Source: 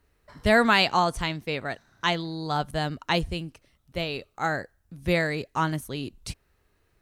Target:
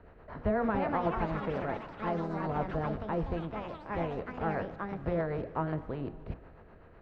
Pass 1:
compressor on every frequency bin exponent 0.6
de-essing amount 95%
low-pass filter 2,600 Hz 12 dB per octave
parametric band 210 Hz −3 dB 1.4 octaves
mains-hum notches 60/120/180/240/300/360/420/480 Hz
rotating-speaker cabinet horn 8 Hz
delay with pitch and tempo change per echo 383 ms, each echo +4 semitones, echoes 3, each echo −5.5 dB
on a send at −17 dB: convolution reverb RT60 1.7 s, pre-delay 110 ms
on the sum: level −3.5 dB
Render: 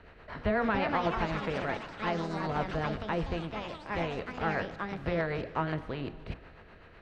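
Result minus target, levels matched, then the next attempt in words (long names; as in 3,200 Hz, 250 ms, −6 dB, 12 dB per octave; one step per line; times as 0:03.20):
2,000 Hz band +5.5 dB
compressor on every frequency bin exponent 0.6
de-essing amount 95%
low-pass filter 1,100 Hz 12 dB per octave
parametric band 210 Hz −3 dB 1.4 octaves
mains-hum notches 60/120/180/240/300/360/420/480 Hz
rotating-speaker cabinet horn 8 Hz
delay with pitch and tempo change per echo 383 ms, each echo +4 semitones, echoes 3, each echo −5.5 dB
on a send at −17 dB: convolution reverb RT60 1.7 s, pre-delay 110 ms
on the sum: level −3.5 dB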